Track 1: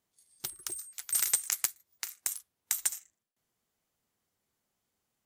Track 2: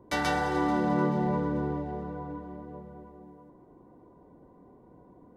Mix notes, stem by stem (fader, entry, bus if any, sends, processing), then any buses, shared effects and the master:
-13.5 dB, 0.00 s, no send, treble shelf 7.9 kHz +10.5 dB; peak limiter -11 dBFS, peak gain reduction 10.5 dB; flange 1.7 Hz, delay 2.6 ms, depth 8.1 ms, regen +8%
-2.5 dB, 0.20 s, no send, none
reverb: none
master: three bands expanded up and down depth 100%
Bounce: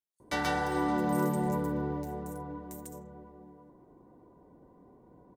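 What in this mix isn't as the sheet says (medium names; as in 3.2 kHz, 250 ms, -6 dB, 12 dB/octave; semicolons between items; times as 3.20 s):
stem 1 -13.5 dB -> -19.5 dB; master: missing three bands expanded up and down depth 100%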